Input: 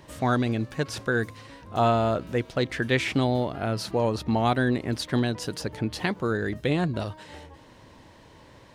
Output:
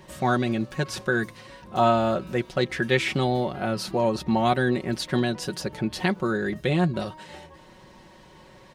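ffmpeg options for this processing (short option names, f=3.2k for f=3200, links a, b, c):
-af "aecho=1:1:5.4:0.67"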